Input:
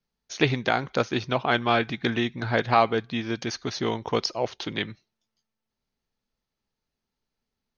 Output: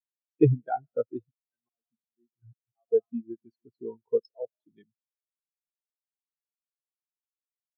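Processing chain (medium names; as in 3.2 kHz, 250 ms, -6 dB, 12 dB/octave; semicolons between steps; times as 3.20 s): algorithmic reverb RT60 1.1 s, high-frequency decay 0.85×, pre-delay 80 ms, DRR 15.5 dB; 1.22–2.92 s: slow attack 664 ms; spectral contrast expander 4:1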